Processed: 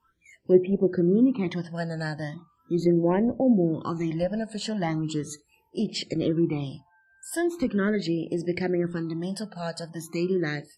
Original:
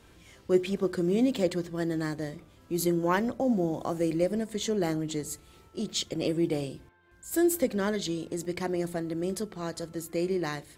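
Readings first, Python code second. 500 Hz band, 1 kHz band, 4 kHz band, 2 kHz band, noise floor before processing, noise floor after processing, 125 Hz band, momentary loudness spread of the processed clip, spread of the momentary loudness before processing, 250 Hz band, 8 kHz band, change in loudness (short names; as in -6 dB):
+2.5 dB, 0.0 dB, -0.5 dB, +2.5 dB, -57 dBFS, -66 dBFS, +5.5 dB, 12 LU, 11 LU, +4.0 dB, -4.5 dB, +3.5 dB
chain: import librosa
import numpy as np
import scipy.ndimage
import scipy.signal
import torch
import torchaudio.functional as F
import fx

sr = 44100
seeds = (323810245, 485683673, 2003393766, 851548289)

y = fx.phaser_stages(x, sr, stages=12, low_hz=350.0, high_hz=1300.0, hz=0.39, feedback_pct=5)
y = fx.env_lowpass_down(y, sr, base_hz=1300.0, full_db=-24.5)
y = fx.noise_reduce_blind(y, sr, reduce_db=26)
y = y * librosa.db_to_amplitude(6.5)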